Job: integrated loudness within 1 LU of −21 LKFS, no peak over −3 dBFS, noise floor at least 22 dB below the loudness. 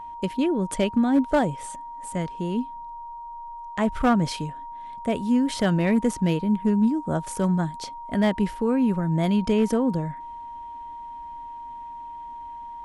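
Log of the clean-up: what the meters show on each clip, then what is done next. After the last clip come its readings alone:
share of clipped samples 0.3%; peaks flattened at −13.5 dBFS; interfering tone 940 Hz; level of the tone −35 dBFS; integrated loudness −24.0 LKFS; sample peak −13.5 dBFS; target loudness −21.0 LKFS
→ clipped peaks rebuilt −13.5 dBFS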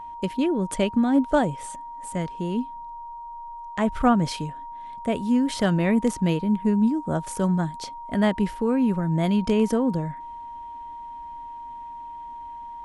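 share of clipped samples 0.0%; interfering tone 940 Hz; level of the tone −35 dBFS
→ notch filter 940 Hz, Q 30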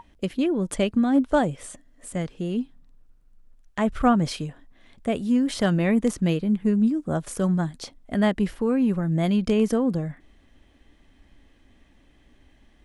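interfering tone none found; integrated loudness −24.0 LKFS; sample peak −7.0 dBFS; target loudness −21.0 LKFS
→ level +3 dB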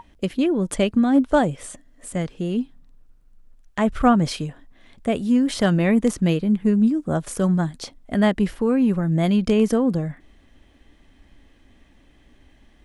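integrated loudness −21.0 LKFS; sample peak −4.0 dBFS; background noise floor −55 dBFS

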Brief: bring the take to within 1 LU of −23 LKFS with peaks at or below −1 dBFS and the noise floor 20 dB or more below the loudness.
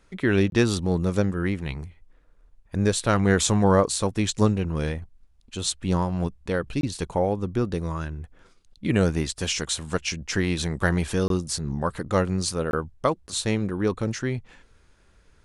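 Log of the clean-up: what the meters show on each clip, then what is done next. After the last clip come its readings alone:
number of dropouts 4; longest dropout 22 ms; integrated loudness −25.0 LKFS; sample peak −5.0 dBFS; target loudness −23.0 LKFS
→ repair the gap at 0:00.50/0:06.81/0:11.28/0:12.71, 22 ms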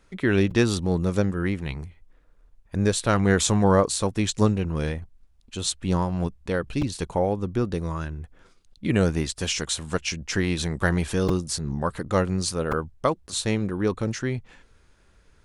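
number of dropouts 0; integrated loudness −25.0 LKFS; sample peak −5.0 dBFS; target loudness −23.0 LKFS
→ level +2 dB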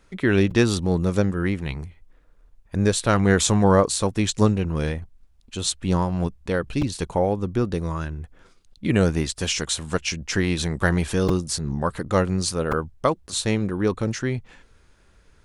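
integrated loudness −23.0 LKFS; sample peak −3.0 dBFS; background noise floor −56 dBFS

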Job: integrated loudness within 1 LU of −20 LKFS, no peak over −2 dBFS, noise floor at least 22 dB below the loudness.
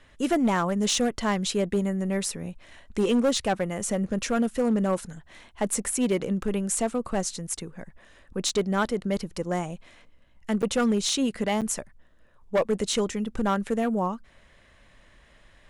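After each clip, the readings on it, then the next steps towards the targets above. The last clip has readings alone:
share of clipped samples 1.1%; peaks flattened at −17.5 dBFS; number of dropouts 2; longest dropout 7.7 ms; integrated loudness −26.5 LKFS; sample peak −17.5 dBFS; target loudness −20.0 LKFS
→ clipped peaks rebuilt −17.5 dBFS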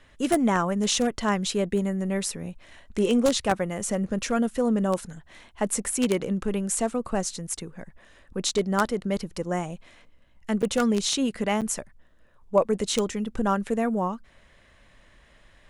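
share of clipped samples 0.0%; number of dropouts 2; longest dropout 7.7 ms
→ repair the gap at 0:10.62/0:11.61, 7.7 ms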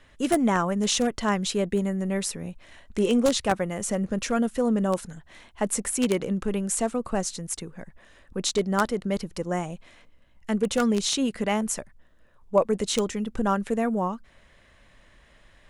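number of dropouts 0; integrated loudness −26.0 LKFS; sample peak −8.5 dBFS; target loudness −20.0 LKFS
→ level +6 dB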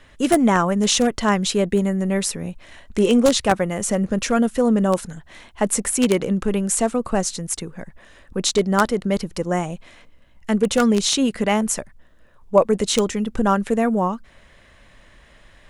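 integrated loudness −20.0 LKFS; sample peak −2.5 dBFS; background noise floor −51 dBFS

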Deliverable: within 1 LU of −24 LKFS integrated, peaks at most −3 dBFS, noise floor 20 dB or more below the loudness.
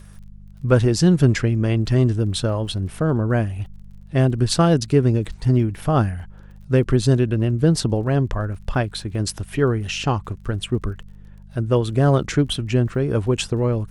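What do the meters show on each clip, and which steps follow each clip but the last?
crackle rate 41 per second; mains hum 50 Hz; hum harmonics up to 200 Hz; level of the hum −42 dBFS; integrated loudness −20.5 LKFS; sample peak −3.5 dBFS; target loudness −24.0 LKFS
→ click removal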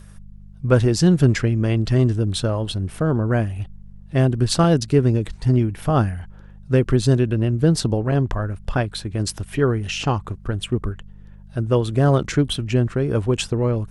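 crackle rate 0.14 per second; mains hum 50 Hz; hum harmonics up to 200 Hz; level of the hum −42 dBFS
→ hum removal 50 Hz, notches 4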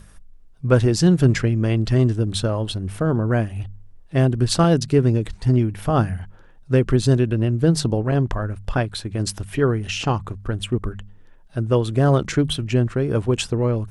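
mains hum none found; integrated loudness −20.5 LKFS; sample peak −3.5 dBFS; target loudness −24.0 LKFS
→ level −3.5 dB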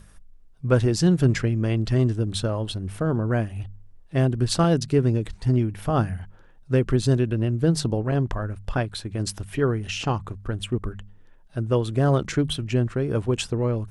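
integrated loudness −24.0 LKFS; sample peak −7.0 dBFS; background noise floor −50 dBFS

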